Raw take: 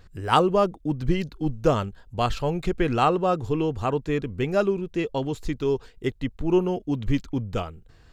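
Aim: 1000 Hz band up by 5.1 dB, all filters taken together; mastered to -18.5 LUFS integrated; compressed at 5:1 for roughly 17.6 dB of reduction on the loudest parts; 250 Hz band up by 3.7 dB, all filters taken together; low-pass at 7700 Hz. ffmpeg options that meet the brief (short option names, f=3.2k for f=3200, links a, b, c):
-af "lowpass=7.7k,equalizer=f=250:t=o:g=5,equalizer=f=1k:t=o:g=6.5,acompressor=threshold=-31dB:ratio=5,volume=16.5dB"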